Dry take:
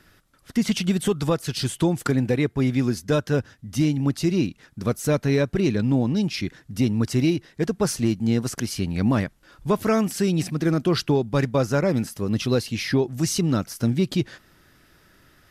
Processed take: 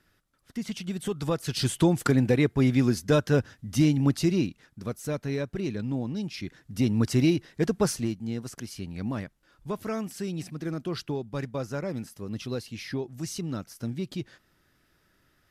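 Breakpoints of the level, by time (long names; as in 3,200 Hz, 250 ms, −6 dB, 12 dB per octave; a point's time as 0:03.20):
0:00.86 −11.5 dB
0:01.67 −0.5 dB
0:04.15 −0.5 dB
0:04.88 −9.5 dB
0:06.33 −9.5 dB
0:06.98 −1.5 dB
0:07.82 −1.5 dB
0:08.22 −11 dB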